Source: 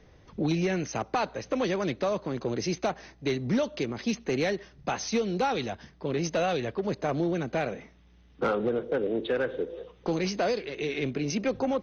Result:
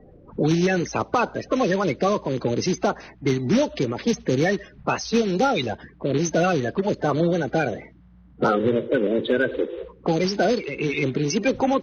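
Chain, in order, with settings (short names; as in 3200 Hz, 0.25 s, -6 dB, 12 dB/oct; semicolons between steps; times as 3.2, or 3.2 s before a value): bin magnitudes rounded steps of 30 dB; 6.98–8.73 notch 2500 Hz, Q 13; low-pass opened by the level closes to 1100 Hz, open at -24.5 dBFS; gain +7.5 dB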